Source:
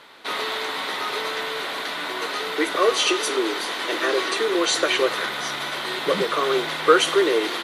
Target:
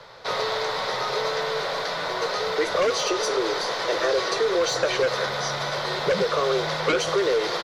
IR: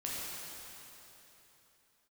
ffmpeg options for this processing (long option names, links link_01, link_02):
-filter_complex "[0:a]firequalizer=gain_entry='entry(120,0);entry(270,-24);entry(510,-5);entry(730,-11);entry(2900,-21);entry(5100,-8);entry(8700,-25)':delay=0.05:min_phase=1,aeval=exprs='0.224*sin(PI/2*3.55*val(0)/0.224)':channel_layout=same,acrossover=split=110|1000|2000[link_01][link_02][link_03][link_04];[link_01]acompressor=threshold=-49dB:ratio=4[link_05];[link_02]acompressor=threshold=-20dB:ratio=4[link_06];[link_03]acompressor=threshold=-33dB:ratio=4[link_07];[link_04]acompressor=threshold=-27dB:ratio=4[link_08];[link_05][link_06][link_07][link_08]amix=inputs=4:normalize=0"